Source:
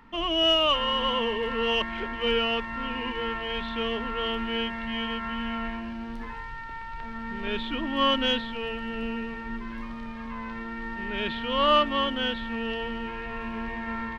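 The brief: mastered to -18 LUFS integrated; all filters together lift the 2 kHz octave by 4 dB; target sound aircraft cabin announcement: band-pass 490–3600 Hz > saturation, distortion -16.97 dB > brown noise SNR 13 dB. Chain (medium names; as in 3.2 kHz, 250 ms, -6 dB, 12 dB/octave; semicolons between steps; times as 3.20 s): band-pass 490–3600 Hz; peaking EQ 2 kHz +5.5 dB; saturation -17 dBFS; brown noise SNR 13 dB; trim +10.5 dB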